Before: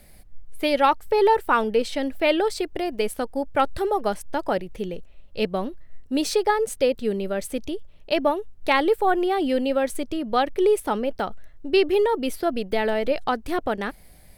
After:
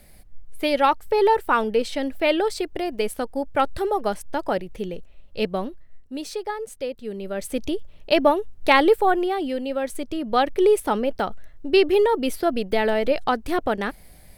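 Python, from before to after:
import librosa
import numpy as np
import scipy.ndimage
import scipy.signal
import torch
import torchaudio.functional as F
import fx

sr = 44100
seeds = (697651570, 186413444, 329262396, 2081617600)

y = fx.gain(x, sr, db=fx.line((5.59, 0.0), (6.17, -8.5), (7.03, -8.5), (7.66, 4.0), (8.88, 4.0), (9.59, -5.0), (10.44, 2.0)))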